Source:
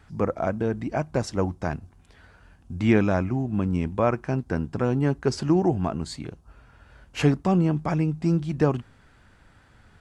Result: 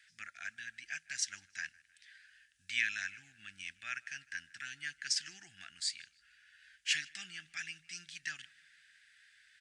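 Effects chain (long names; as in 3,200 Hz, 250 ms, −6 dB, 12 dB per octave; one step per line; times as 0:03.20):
elliptic high-pass filter 1,600 Hz, stop band 40 dB
dynamic equaliser 5,600 Hz, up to +4 dB, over −54 dBFS, Q 1.1
feedback echo with a low-pass in the loop 161 ms, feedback 57%, low-pass 4,300 Hz, level −23.5 dB
wrong playback speed 24 fps film run at 25 fps
downsampling to 22,050 Hz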